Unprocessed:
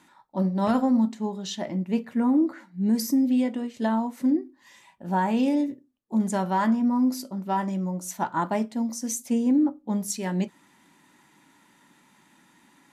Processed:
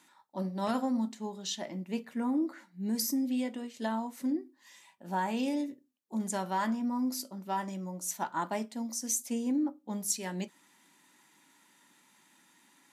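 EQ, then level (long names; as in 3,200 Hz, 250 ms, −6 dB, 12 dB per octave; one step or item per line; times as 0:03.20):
Bessel high-pass filter 200 Hz
high-shelf EQ 2,700 Hz +8.5 dB
−7.5 dB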